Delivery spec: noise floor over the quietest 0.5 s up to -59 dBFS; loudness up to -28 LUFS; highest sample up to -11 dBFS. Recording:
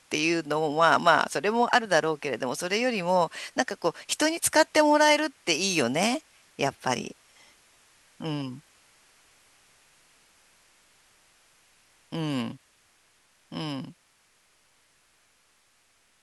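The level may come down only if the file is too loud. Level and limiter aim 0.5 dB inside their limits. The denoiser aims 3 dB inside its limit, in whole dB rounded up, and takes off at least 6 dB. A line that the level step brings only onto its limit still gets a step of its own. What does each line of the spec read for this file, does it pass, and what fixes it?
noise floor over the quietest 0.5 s -65 dBFS: OK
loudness -25.5 LUFS: fail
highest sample -6.0 dBFS: fail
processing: gain -3 dB; limiter -11.5 dBFS

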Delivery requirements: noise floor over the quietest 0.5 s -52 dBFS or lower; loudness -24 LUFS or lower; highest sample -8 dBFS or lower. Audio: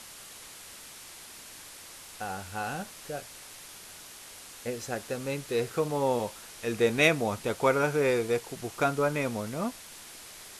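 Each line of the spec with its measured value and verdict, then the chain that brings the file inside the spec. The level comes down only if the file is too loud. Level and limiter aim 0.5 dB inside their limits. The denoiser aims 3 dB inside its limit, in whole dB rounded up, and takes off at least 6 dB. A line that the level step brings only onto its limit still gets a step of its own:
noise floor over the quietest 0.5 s -47 dBFS: fail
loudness -29.5 LUFS: OK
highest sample -9.0 dBFS: OK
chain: denoiser 8 dB, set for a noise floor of -47 dBFS

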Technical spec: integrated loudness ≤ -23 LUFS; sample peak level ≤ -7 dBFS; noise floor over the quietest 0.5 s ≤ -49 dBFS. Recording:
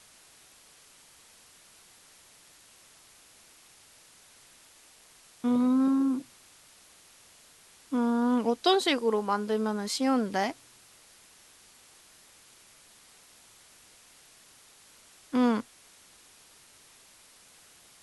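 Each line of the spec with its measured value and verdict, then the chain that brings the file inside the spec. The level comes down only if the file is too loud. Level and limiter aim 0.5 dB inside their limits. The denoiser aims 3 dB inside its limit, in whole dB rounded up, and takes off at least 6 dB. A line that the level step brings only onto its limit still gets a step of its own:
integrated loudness -27.5 LUFS: OK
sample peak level -9.5 dBFS: OK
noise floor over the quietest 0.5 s -57 dBFS: OK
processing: none

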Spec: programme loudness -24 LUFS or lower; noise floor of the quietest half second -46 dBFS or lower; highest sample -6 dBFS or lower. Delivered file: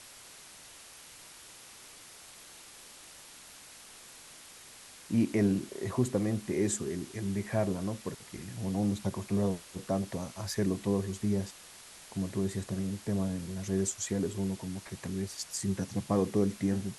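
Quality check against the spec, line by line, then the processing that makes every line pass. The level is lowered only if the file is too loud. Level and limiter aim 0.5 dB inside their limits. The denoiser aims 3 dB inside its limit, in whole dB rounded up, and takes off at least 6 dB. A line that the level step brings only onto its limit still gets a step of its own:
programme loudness -33.0 LUFS: OK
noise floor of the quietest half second -52 dBFS: OK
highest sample -15.0 dBFS: OK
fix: none

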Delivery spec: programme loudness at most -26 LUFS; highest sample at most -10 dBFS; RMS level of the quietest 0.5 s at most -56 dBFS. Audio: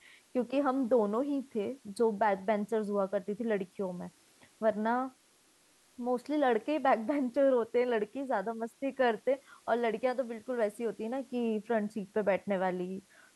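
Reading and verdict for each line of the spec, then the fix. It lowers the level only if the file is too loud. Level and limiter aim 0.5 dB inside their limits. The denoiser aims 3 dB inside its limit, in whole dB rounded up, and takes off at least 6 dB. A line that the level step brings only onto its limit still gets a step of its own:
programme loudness -32.0 LUFS: OK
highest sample -16.0 dBFS: OK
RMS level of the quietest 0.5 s -66 dBFS: OK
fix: none

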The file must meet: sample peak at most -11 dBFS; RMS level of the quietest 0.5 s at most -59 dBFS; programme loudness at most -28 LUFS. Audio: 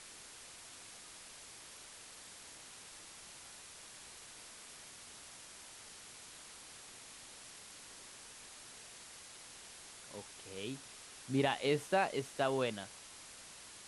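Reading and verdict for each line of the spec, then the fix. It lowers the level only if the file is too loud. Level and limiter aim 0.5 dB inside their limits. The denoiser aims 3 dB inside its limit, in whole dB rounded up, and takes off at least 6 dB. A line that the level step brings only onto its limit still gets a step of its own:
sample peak -19.0 dBFS: OK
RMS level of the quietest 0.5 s -54 dBFS: fail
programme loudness -43.0 LUFS: OK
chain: denoiser 8 dB, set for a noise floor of -54 dBFS

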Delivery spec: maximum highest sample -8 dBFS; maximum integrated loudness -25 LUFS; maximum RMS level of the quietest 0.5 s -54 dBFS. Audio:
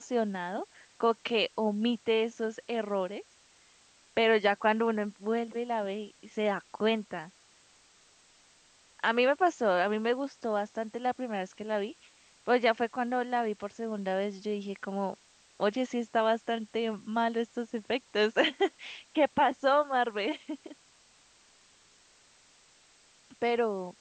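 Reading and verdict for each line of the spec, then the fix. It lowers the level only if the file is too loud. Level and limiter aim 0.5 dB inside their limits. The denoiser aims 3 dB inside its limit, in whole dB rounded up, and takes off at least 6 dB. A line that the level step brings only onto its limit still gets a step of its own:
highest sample -13.0 dBFS: OK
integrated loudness -30.5 LUFS: OK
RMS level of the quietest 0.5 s -62 dBFS: OK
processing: none

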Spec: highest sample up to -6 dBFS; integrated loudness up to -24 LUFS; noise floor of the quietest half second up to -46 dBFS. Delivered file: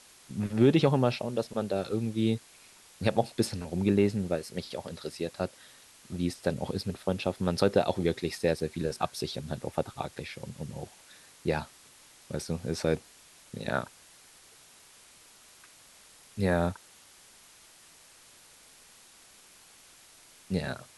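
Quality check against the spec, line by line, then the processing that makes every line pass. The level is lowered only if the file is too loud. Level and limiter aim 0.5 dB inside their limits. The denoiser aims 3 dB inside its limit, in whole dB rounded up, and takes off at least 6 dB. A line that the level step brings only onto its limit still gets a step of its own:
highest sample -8.0 dBFS: OK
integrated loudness -31.0 LUFS: OK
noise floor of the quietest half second -56 dBFS: OK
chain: none

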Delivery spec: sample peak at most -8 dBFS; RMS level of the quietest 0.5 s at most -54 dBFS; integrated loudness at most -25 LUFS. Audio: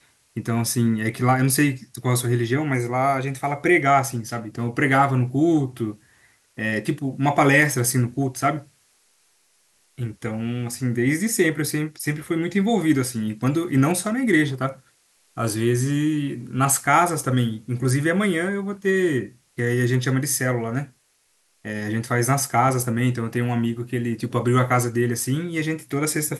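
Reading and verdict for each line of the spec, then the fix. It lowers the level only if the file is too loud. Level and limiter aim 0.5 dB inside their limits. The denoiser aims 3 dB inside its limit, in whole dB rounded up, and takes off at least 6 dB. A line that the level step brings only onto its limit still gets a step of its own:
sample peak -6.0 dBFS: fail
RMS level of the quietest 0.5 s -65 dBFS: OK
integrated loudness -22.0 LUFS: fail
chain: gain -3.5 dB

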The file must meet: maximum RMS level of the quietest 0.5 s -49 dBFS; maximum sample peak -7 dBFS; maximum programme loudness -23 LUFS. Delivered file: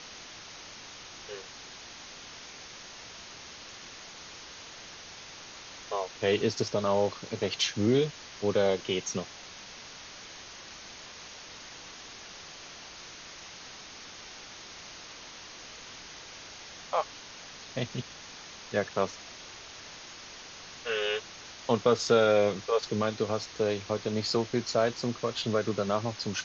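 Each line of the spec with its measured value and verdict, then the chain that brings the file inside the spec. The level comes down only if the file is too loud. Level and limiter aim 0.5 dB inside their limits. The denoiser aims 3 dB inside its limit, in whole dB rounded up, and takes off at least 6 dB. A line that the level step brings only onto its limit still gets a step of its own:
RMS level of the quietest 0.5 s -46 dBFS: fail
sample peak -11.0 dBFS: OK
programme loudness -29.5 LUFS: OK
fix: denoiser 6 dB, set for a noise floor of -46 dBFS

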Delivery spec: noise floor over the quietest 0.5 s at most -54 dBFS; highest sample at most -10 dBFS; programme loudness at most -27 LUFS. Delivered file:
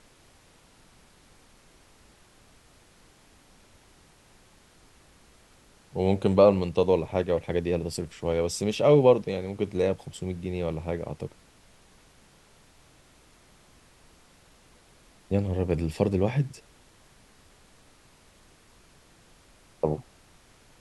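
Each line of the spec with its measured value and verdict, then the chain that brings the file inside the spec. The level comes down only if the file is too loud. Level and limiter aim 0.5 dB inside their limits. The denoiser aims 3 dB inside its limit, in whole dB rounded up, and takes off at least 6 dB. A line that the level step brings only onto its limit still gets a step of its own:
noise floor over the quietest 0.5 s -58 dBFS: OK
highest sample -6.0 dBFS: fail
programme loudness -26.0 LUFS: fail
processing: gain -1.5 dB; limiter -10.5 dBFS

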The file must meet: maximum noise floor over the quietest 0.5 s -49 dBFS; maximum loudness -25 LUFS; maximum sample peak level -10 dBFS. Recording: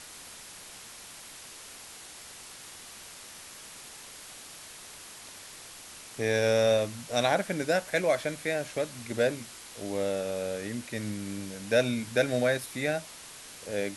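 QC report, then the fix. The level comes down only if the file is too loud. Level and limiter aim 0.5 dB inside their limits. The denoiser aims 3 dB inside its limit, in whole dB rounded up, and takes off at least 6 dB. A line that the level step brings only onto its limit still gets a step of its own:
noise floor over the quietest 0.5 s -47 dBFS: fail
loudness -29.5 LUFS: OK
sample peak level -12.0 dBFS: OK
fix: denoiser 6 dB, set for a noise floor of -47 dBFS

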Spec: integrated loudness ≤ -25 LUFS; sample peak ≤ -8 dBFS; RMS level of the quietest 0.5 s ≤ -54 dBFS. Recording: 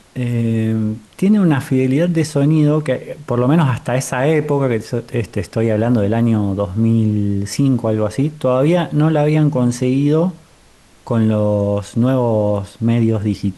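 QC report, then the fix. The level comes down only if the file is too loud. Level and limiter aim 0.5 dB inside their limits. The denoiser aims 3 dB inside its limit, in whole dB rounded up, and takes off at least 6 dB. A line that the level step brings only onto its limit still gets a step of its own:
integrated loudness -16.5 LUFS: fail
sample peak -5.5 dBFS: fail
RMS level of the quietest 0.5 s -48 dBFS: fail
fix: gain -9 dB

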